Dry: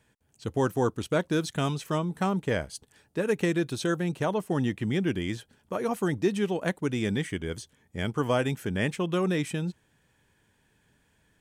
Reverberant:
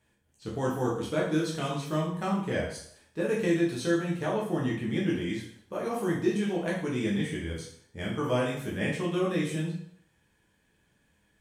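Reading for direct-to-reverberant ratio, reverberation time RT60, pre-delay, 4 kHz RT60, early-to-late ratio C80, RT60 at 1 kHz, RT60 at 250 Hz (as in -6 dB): -4.5 dB, 0.65 s, 6 ms, 0.60 s, 8.5 dB, 0.65 s, 0.60 s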